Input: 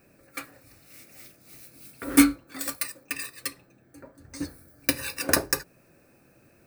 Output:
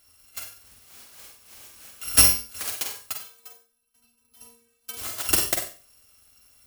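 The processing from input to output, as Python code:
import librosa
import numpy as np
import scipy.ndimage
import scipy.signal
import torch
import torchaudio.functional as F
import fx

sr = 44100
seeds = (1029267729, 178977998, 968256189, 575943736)

y = fx.bit_reversed(x, sr, seeds[0], block=256)
y = fx.stiff_resonator(y, sr, f0_hz=230.0, decay_s=0.29, stiffness=0.008, at=(3.14, 4.97))
y = fx.room_flutter(y, sr, wall_m=8.1, rt60_s=0.33)
y = fx.rev_schroeder(y, sr, rt60_s=0.31, comb_ms=38, drr_db=5.5)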